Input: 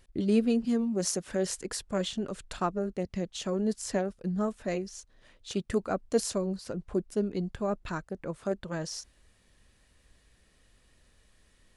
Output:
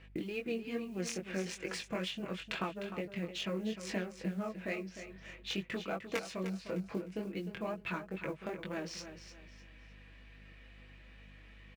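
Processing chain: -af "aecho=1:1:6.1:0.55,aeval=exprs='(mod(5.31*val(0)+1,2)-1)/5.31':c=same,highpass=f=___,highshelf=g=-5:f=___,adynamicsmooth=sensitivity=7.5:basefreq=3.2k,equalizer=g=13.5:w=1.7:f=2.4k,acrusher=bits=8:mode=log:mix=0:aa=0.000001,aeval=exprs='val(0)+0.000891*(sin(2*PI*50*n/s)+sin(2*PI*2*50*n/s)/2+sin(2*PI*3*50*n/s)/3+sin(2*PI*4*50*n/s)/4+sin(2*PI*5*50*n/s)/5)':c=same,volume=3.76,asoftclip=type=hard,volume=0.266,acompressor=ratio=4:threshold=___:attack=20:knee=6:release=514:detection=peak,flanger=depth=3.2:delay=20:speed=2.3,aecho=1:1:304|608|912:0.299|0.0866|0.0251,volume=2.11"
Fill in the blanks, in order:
140, 10k, 0.00891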